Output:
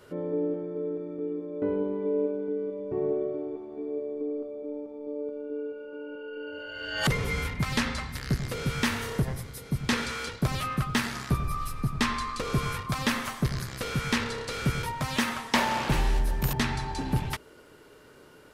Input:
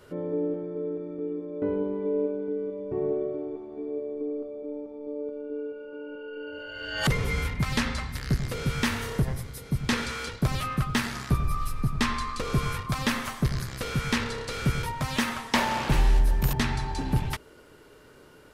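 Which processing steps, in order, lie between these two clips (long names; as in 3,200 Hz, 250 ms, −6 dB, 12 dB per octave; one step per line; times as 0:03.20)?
low-shelf EQ 78 Hz −6.5 dB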